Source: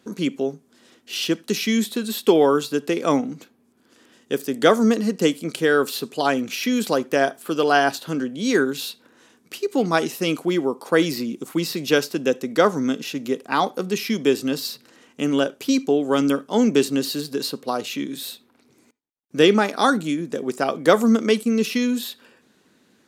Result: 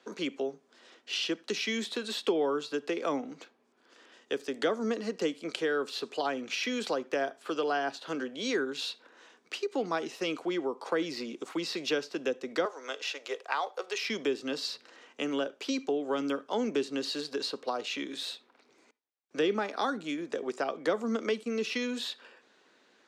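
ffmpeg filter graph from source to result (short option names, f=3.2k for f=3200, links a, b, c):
-filter_complex "[0:a]asettb=1/sr,asplit=3[a][b][c];[a]atrim=end=12.654[d];[b]atrim=start=12.65:end=14.03,asetpts=PTS-STARTPTS,afade=t=in:d=0.004:c=qsin,afade=t=out:st=1.376:d=0.004:c=qsin,highpass=f=470:w=0.5412,highpass=f=470:w=1.3066,acrusher=bits=6:mode=log:mix=0:aa=0.000001[e];[c]atrim=start=14.026[f];[d][e]acrossfade=d=0.004:c1=hsin:c2=qsin[g];[g][f]acrossfade=d=0.004:c1=qsin:c2=hsin,highshelf=f=5.6k:g=-5.5,acrossover=split=300[h][i];[i]acompressor=threshold=-29dB:ratio=5[j];[h][j]amix=inputs=2:normalize=0,acrossover=split=380 7600:gain=0.0891 1 0.0708[k][l][m];[k][l][m]amix=inputs=3:normalize=0"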